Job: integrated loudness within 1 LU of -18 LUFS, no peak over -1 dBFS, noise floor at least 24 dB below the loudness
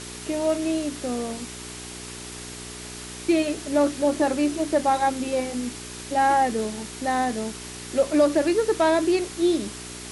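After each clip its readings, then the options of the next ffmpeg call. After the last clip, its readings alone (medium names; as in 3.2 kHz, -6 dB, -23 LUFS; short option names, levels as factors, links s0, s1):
hum 60 Hz; highest harmonic 420 Hz; hum level -39 dBFS; noise floor -38 dBFS; noise floor target -48 dBFS; loudness -24.0 LUFS; peak level -9.0 dBFS; loudness target -18.0 LUFS
-> -af "bandreject=f=60:t=h:w=4,bandreject=f=120:t=h:w=4,bandreject=f=180:t=h:w=4,bandreject=f=240:t=h:w=4,bandreject=f=300:t=h:w=4,bandreject=f=360:t=h:w=4,bandreject=f=420:t=h:w=4"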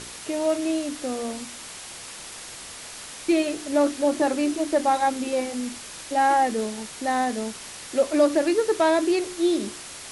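hum not found; noise floor -40 dBFS; noise floor target -48 dBFS
-> -af "afftdn=nr=8:nf=-40"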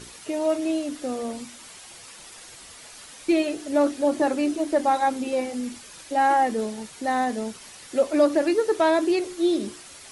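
noise floor -45 dBFS; noise floor target -48 dBFS
-> -af "afftdn=nr=6:nf=-45"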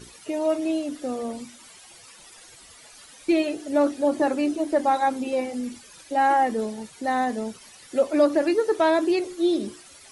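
noise floor -49 dBFS; loudness -24.0 LUFS; peak level -8.5 dBFS; loudness target -18.0 LUFS
-> -af "volume=2"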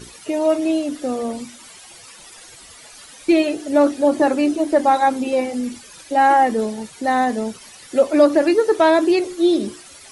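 loudness -18.0 LUFS; peak level -2.5 dBFS; noise floor -43 dBFS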